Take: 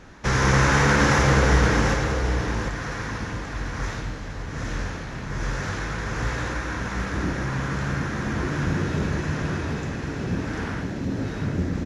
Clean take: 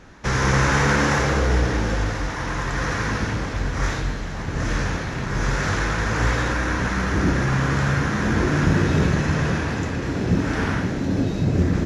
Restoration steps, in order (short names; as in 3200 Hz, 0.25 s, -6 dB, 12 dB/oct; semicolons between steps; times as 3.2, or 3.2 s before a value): inverse comb 0.744 s -5 dB; gain correction +7 dB, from 1.94